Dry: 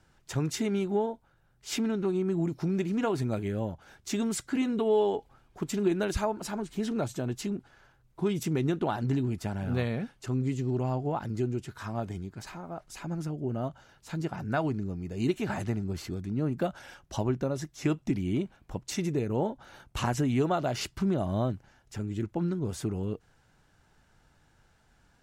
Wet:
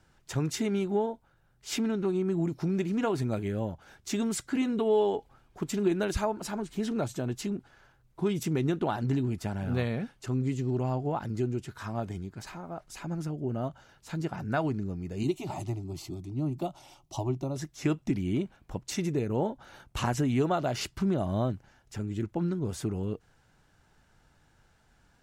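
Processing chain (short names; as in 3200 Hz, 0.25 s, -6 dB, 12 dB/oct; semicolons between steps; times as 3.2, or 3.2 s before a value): 15.23–17.56 fixed phaser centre 320 Hz, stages 8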